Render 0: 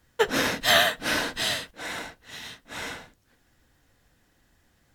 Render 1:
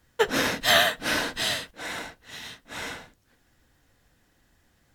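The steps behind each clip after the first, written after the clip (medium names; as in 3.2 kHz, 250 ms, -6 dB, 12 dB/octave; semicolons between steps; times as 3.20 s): no audible change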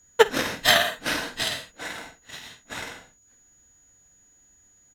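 doubling 49 ms -7 dB; whistle 6.8 kHz -52 dBFS; transient shaper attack +12 dB, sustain -2 dB; trim -4.5 dB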